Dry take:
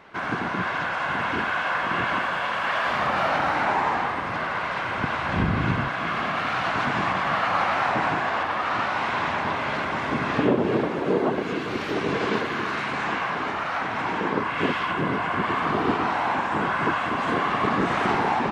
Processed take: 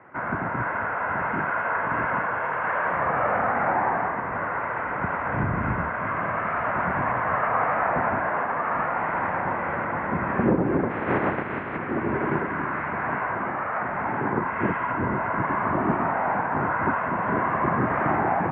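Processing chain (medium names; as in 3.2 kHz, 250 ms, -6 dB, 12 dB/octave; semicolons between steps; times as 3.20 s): 10.89–11.76 s: spectral contrast reduction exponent 0.38; mistuned SSB -62 Hz 150–2100 Hz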